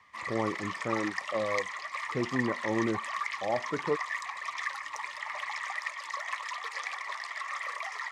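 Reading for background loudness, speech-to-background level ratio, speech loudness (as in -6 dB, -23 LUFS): -35.5 LUFS, 1.5 dB, -34.0 LUFS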